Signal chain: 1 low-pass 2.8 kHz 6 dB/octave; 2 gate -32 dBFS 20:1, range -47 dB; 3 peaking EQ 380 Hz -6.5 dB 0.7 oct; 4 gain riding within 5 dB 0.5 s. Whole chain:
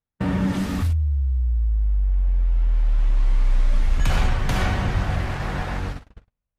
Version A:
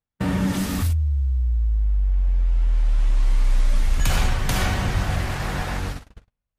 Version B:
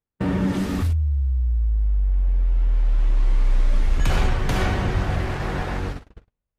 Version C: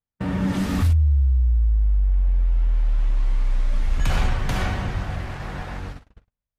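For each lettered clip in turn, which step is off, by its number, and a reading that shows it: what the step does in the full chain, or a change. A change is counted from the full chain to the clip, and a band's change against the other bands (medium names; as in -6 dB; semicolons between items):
1, 4 kHz band +4.0 dB; 3, 500 Hz band +3.0 dB; 4, crest factor change -1.5 dB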